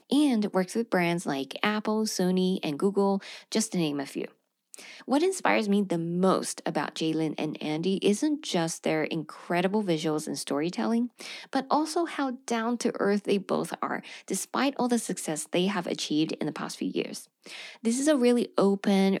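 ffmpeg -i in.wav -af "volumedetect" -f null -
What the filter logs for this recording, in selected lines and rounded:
mean_volume: -27.7 dB
max_volume: -7.7 dB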